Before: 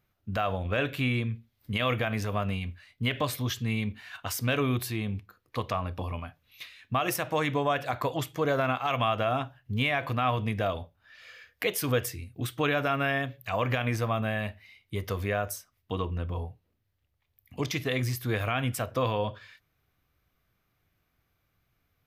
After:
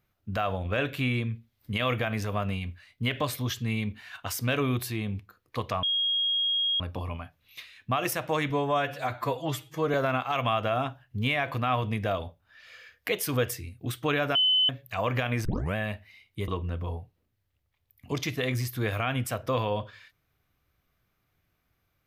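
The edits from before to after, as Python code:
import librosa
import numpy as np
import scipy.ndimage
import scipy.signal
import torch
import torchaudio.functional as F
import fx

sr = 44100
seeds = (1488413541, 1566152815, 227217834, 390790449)

y = fx.edit(x, sr, fx.insert_tone(at_s=5.83, length_s=0.97, hz=3270.0, db=-23.5),
    fx.stretch_span(start_s=7.53, length_s=0.96, factor=1.5),
    fx.bleep(start_s=12.9, length_s=0.34, hz=3030.0, db=-19.5),
    fx.tape_start(start_s=14.0, length_s=0.3),
    fx.cut(start_s=15.03, length_s=0.93), tone=tone)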